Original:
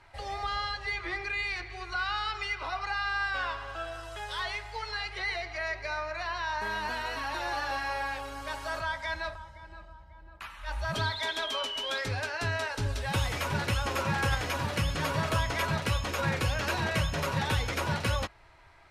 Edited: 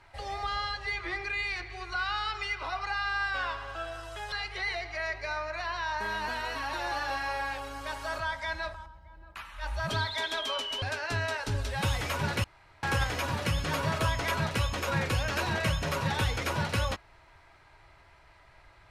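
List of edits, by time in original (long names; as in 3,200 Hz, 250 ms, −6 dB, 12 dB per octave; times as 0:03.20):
0:04.32–0:04.93: remove
0:09.47–0:09.91: remove
0:11.87–0:12.13: remove
0:13.75–0:14.14: fill with room tone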